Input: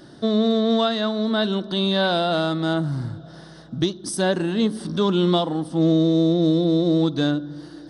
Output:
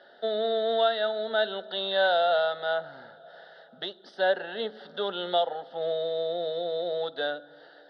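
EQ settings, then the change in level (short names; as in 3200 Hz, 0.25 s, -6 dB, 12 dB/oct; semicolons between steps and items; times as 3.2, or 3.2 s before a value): HPF 350 Hz 24 dB/oct; LPF 3300 Hz 24 dB/oct; fixed phaser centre 1600 Hz, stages 8; 0.0 dB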